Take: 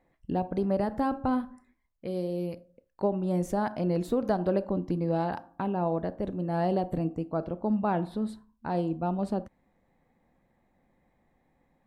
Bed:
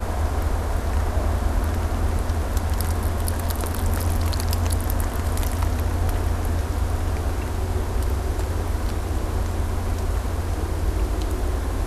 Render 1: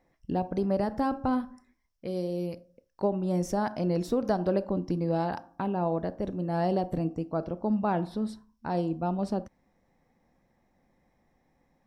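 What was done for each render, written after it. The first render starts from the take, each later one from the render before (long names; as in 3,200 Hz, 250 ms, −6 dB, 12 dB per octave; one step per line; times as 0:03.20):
parametric band 5,500 Hz +13.5 dB 0.29 octaves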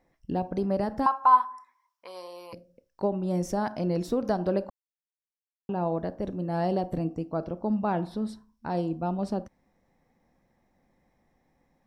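0:01.06–0:02.53: high-pass with resonance 1,000 Hz, resonance Q 12
0:04.70–0:05.69: silence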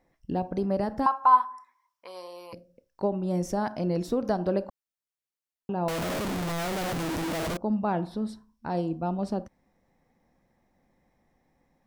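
0:05.88–0:07.57: sign of each sample alone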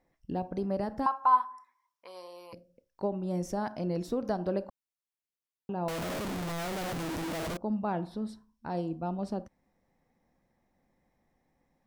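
level −4.5 dB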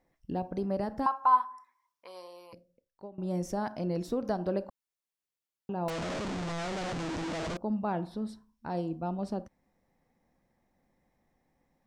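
0:02.14–0:03.18: fade out, to −19.5 dB
0:05.90–0:07.57: low-pass filter 7,600 Hz 24 dB per octave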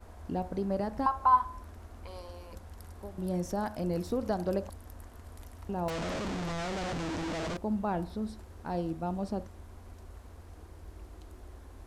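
mix in bed −24.5 dB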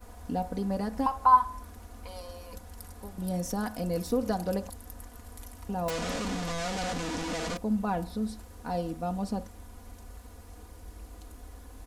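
high-shelf EQ 5,500 Hz +10 dB
comb filter 4.1 ms, depth 68%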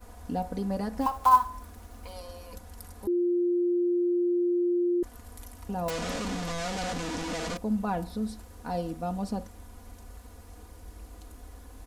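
0:01.01–0:02.14: one scale factor per block 5 bits
0:03.07–0:05.03: beep over 351 Hz −22.5 dBFS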